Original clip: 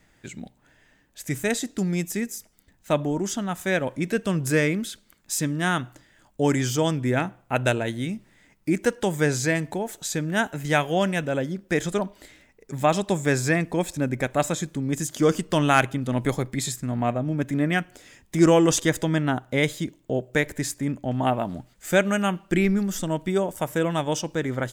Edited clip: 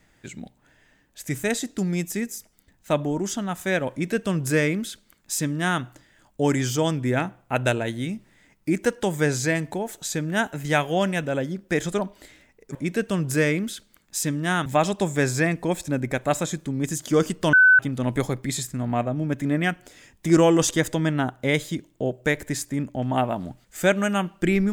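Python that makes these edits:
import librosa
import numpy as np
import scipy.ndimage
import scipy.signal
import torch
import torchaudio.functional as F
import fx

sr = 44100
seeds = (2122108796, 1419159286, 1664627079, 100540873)

y = fx.edit(x, sr, fx.duplicate(start_s=3.91, length_s=1.91, to_s=12.75),
    fx.bleep(start_s=15.62, length_s=0.26, hz=1510.0, db=-10.5), tone=tone)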